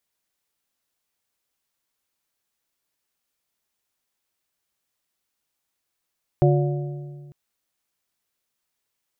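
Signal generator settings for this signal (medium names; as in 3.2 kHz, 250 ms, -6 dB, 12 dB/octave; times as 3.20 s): metal hit plate, length 0.90 s, lowest mode 144 Hz, modes 4, decay 1.94 s, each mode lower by 3.5 dB, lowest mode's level -14 dB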